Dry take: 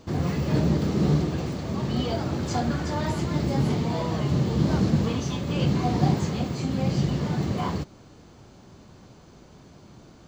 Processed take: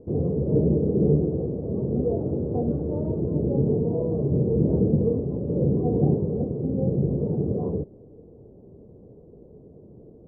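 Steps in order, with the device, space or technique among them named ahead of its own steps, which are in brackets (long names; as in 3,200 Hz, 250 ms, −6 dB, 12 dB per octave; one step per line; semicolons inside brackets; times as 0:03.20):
under water (low-pass filter 560 Hz 24 dB per octave; parametric band 450 Hz +11.5 dB 0.46 octaves)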